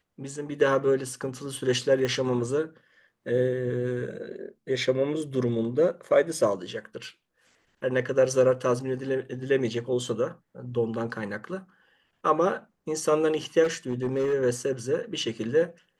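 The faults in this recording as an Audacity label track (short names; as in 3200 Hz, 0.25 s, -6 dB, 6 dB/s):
2.050000	2.050000	pop -16 dBFS
13.630000	14.340000	clipped -22 dBFS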